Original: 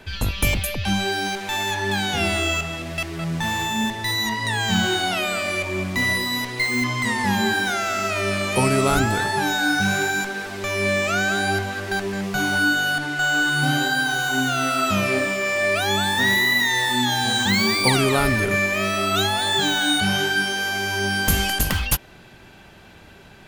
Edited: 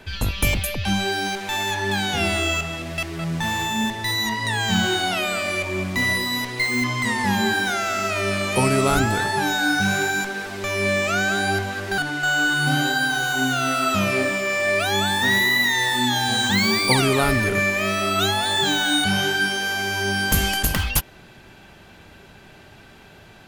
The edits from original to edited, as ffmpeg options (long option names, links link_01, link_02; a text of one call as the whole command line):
ffmpeg -i in.wav -filter_complex "[0:a]asplit=2[link_01][link_02];[link_01]atrim=end=11.982[link_03];[link_02]atrim=start=12.938[link_04];[link_03][link_04]acrossfade=duration=0.004:curve1=hsin:curve2=hsin" out.wav